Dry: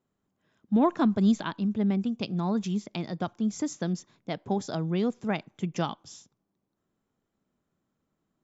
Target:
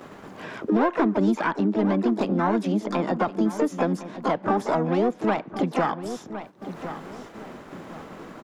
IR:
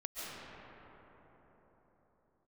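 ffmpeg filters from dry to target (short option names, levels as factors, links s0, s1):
-filter_complex "[0:a]asplit=2[s0][s1];[s1]highpass=f=720:p=1,volume=6.31,asoftclip=type=tanh:threshold=0.2[s2];[s0][s2]amix=inputs=2:normalize=0,lowpass=f=1100:p=1,volume=0.501,asplit=3[s3][s4][s5];[s4]asetrate=66075,aresample=44100,atempo=0.66742,volume=0.501[s6];[s5]asetrate=88200,aresample=44100,atempo=0.5,volume=0.158[s7];[s3][s6][s7]amix=inputs=3:normalize=0,acompressor=mode=upward:threshold=0.0631:ratio=2.5,asplit=2[s8][s9];[s9]adelay=1059,lowpass=f=2200:p=1,volume=0.2,asplit=2[s10][s11];[s11]adelay=1059,lowpass=f=2200:p=1,volume=0.33,asplit=2[s12][s13];[s13]adelay=1059,lowpass=f=2200:p=1,volume=0.33[s14];[s8][s10][s12][s14]amix=inputs=4:normalize=0,agate=range=0.224:threshold=0.00447:ratio=16:detection=peak,acrossover=split=190|2200[s15][s16][s17];[s15]acompressor=threshold=0.00631:ratio=4[s18];[s16]acompressor=threshold=0.0562:ratio=4[s19];[s17]acompressor=threshold=0.00224:ratio=4[s20];[s18][s19][s20]amix=inputs=3:normalize=0,volume=2.11"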